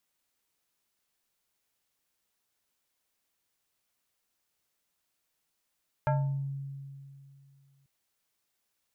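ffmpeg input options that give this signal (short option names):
-f lavfi -i "aevalsrc='0.075*pow(10,-3*t/2.53)*sin(2*PI*138*t+1.4*pow(10,-3*t/0.55)*sin(2*PI*5.43*138*t))':d=1.79:s=44100"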